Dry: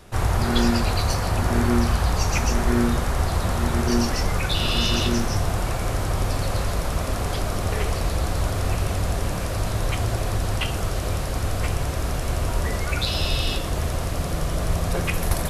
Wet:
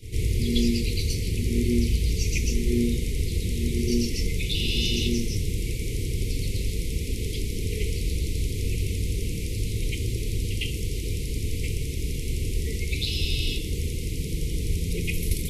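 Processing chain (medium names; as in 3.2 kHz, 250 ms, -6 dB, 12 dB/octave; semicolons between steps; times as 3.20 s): Chebyshev band-stop 470–2100 Hz, order 5; reverse echo 106 ms -12 dB; trim -2.5 dB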